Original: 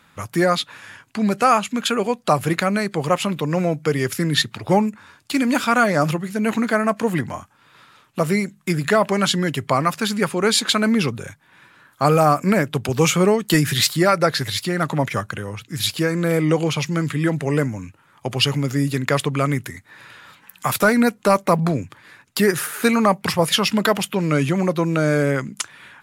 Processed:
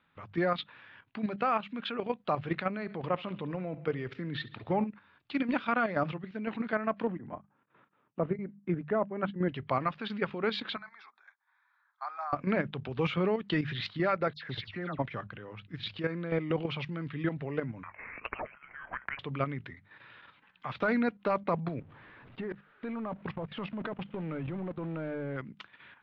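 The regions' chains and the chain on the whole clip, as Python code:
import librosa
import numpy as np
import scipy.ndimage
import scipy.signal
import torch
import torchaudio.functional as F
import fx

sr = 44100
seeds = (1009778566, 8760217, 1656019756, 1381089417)

y = fx.chain(x, sr, fx.high_shelf(hz=2700.0, db=-4.5),
    fx.echo_feedback(ms=70, feedback_pct=53, wet_db=-20.0), at=(2.71, 4.87))
y = fx.chain(y, sr, fx.bandpass_edges(low_hz=240.0, high_hz=2600.0),
    fx.tilt_eq(slope=-4.0),
    fx.tremolo_abs(hz=4.2), at=(7.07, 9.49))
y = fx.chain(y, sr, fx.highpass(hz=770.0, slope=24),
    fx.peak_eq(hz=1300.0, db=-4.5, octaves=1.6),
    fx.fixed_phaser(hz=1200.0, stages=4), at=(10.76, 12.33))
y = fx.chain(y, sr, fx.lowpass(hz=8900.0, slope=12),
    fx.dispersion(late='lows', ms=97.0, hz=2500.0), at=(14.33, 14.99))
y = fx.chain(y, sr, fx.highpass(hz=1100.0, slope=24),
    fx.freq_invert(carrier_hz=3500),
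    fx.band_squash(depth_pct=100), at=(17.83, 19.19))
y = fx.chain(y, sr, fx.zero_step(step_db=-20.0),
    fx.level_steps(step_db=19),
    fx.spacing_loss(db_at_10k=35), at=(21.8, 25.37))
y = scipy.signal.sosfilt(scipy.signal.butter(6, 3700.0, 'lowpass', fs=sr, output='sos'), y)
y = fx.hum_notches(y, sr, base_hz=50, count=4)
y = fx.level_steps(y, sr, step_db=9)
y = F.gain(torch.from_numpy(y), -9.0).numpy()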